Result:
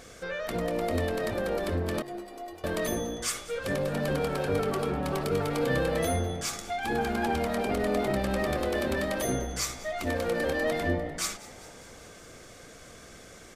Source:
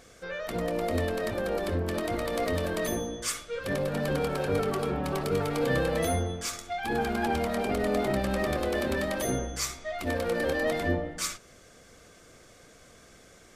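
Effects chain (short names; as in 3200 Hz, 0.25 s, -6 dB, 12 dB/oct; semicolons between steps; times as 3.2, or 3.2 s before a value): in parallel at +2.5 dB: compressor, threshold -42 dBFS, peak gain reduction 18.5 dB; 2.02–2.64 on the sum: metallic resonator 350 Hz, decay 0.25 s, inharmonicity 0.008; frequency-shifting echo 0.199 s, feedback 63%, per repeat +58 Hz, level -19 dB; gain -2 dB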